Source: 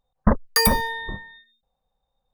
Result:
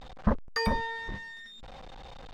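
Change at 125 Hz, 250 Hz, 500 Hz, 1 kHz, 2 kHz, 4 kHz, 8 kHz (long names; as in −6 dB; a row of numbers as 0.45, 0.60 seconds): −7.5, −7.5, −7.5, −7.5, −7.5, −12.5, −23.0 decibels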